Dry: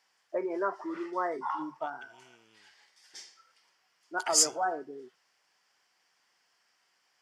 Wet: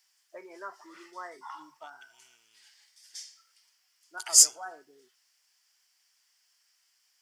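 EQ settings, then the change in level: pre-emphasis filter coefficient 0.97; bass shelf 130 Hz +10.5 dB; +7.0 dB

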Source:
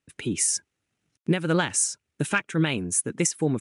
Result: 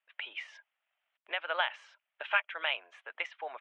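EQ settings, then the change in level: Chebyshev band-pass 620–3300 Hz, order 4; dynamic bell 1.2 kHz, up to -3 dB, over -35 dBFS, Q 0.72; 0.0 dB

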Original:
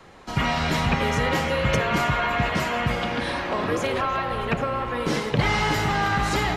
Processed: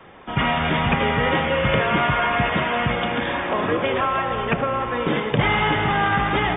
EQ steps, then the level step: brick-wall FIR low-pass 3.7 kHz; bass shelf 76 Hz -8.5 dB; +3.5 dB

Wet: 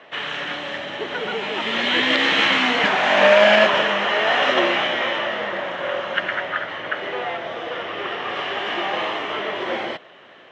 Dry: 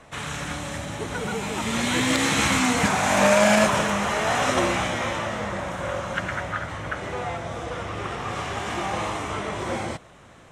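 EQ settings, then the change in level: cabinet simulation 300–4400 Hz, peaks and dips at 390 Hz +5 dB, 610 Hz +4 dB, 1.8 kHz +7 dB, 3 kHz +10 dB; +1.5 dB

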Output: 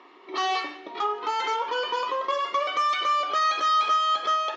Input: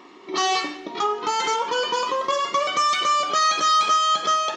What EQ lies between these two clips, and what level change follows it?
band-pass 400–3500 Hz; -3.0 dB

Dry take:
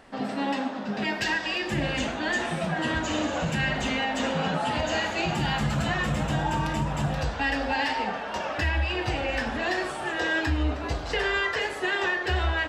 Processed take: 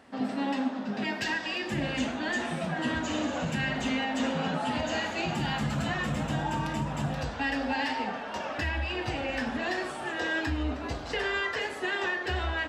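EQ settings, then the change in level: high-pass 66 Hz; peaking EQ 250 Hz +8 dB 0.24 oct; -4.0 dB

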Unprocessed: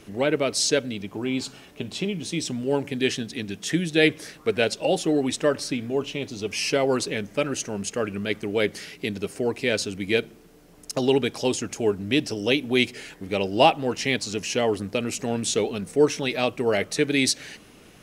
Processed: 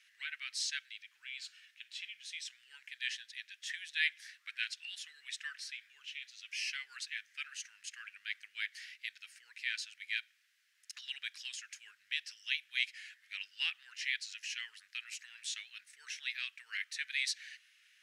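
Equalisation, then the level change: elliptic high-pass 1.7 kHz, stop band 60 dB; low-pass 2.3 kHz 6 dB/octave; -5.0 dB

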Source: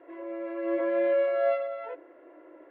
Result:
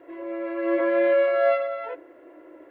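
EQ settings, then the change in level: bass shelf 300 Hz +10.5 dB; dynamic bell 1.4 kHz, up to +6 dB, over -41 dBFS, Q 0.74; treble shelf 2.8 kHz +11 dB; 0.0 dB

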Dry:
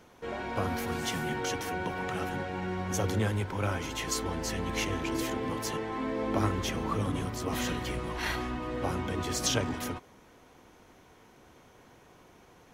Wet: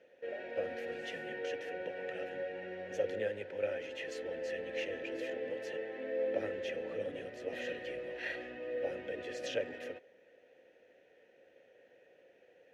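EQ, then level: vowel filter e; +5.0 dB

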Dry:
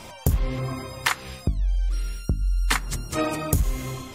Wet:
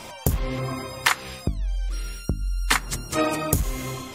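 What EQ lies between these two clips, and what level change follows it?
bass shelf 150 Hz -7 dB; +3.0 dB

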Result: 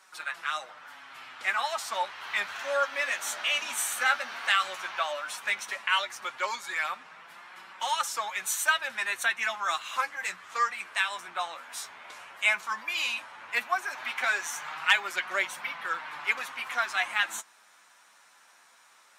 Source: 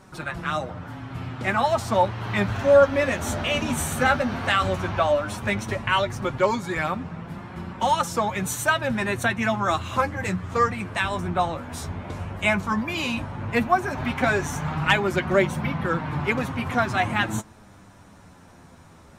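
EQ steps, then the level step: high-pass 1.4 kHz 12 dB/octave; 0.0 dB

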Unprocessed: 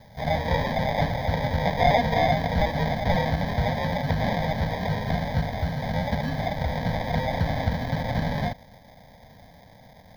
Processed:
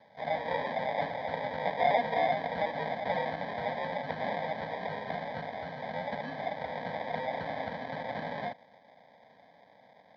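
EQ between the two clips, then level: band-pass 340–4900 Hz; distance through air 170 m; -4.5 dB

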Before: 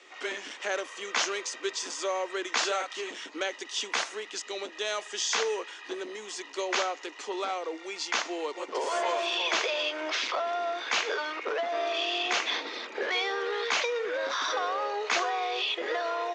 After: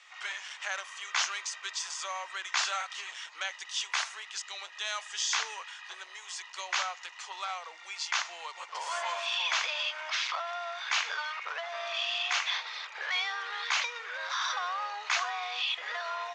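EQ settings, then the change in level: high-pass 860 Hz 24 dB/octave; -1.0 dB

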